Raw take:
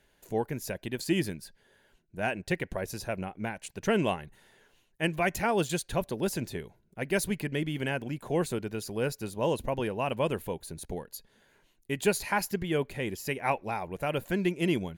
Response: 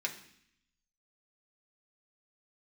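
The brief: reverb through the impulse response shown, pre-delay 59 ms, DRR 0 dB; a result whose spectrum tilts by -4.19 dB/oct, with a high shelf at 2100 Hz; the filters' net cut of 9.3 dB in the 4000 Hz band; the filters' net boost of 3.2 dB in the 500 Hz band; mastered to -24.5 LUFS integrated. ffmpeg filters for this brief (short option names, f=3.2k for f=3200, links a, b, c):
-filter_complex "[0:a]equalizer=f=500:t=o:g=4.5,highshelf=f=2.1k:g=-6,equalizer=f=4k:t=o:g=-7.5,asplit=2[a][b];[1:a]atrim=start_sample=2205,adelay=59[c];[b][c]afir=irnorm=-1:irlink=0,volume=-3.5dB[d];[a][d]amix=inputs=2:normalize=0,volume=4dB"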